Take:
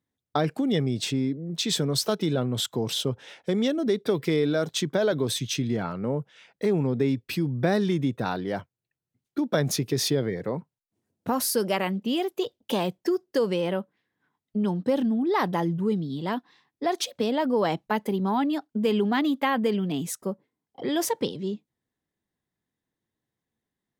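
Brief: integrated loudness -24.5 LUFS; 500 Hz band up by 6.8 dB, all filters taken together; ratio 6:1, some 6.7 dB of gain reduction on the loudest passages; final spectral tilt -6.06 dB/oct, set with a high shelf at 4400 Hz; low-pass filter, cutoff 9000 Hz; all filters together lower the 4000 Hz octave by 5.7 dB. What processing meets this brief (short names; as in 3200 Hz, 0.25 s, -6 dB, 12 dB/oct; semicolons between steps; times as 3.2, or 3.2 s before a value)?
LPF 9000 Hz; bell 500 Hz +8.5 dB; bell 4000 Hz -5 dB; high shelf 4400 Hz -4 dB; compressor 6:1, threshold -20 dBFS; gain +2 dB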